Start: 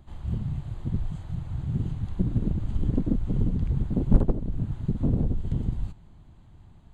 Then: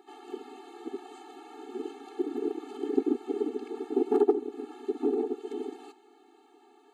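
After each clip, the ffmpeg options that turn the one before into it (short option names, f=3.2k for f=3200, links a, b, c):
-af "highpass=f=460:t=q:w=3.7,afftfilt=real='re*eq(mod(floor(b*sr/1024/230),2),1)':imag='im*eq(mod(floor(b*sr/1024/230),2),1)':win_size=1024:overlap=0.75,volume=6.5dB"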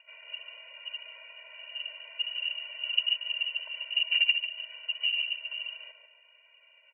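-filter_complex "[0:a]lowpass=f=2.7k:t=q:w=0.5098,lowpass=f=2.7k:t=q:w=0.6013,lowpass=f=2.7k:t=q:w=0.9,lowpass=f=2.7k:t=q:w=2.563,afreqshift=-3200,highpass=f=670:t=q:w=4.9,asplit=2[a][b];[b]adelay=144,lowpass=f=1.5k:p=1,volume=-4dB,asplit=2[c][d];[d]adelay=144,lowpass=f=1.5k:p=1,volume=0.48,asplit=2[e][f];[f]adelay=144,lowpass=f=1.5k:p=1,volume=0.48,asplit=2[g][h];[h]adelay=144,lowpass=f=1.5k:p=1,volume=0.48,asplit=2[i][j];[j]adelay=144,lowpass=f=1.5k:p=1,volume=0.48,asplit=2[k][l];[l]adelay=144,lowpass=f=1.5k:p=1,volume=0.48[m];[a][c][e][g][i][k][m]amix=inputs=7:normalize=0,volume=-2.5dB"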